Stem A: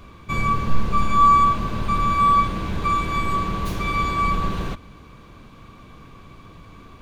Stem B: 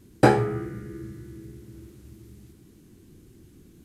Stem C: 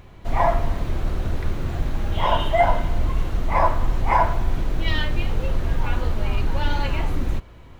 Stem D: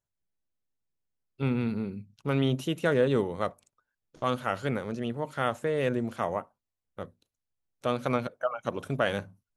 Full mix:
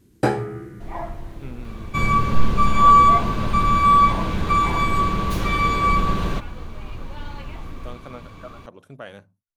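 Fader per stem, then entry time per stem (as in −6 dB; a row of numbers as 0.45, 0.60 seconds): +2.5, −3.0, −12.5, −11.0 decibels; 1.65, 0.00, 0.55, 0.00 seconds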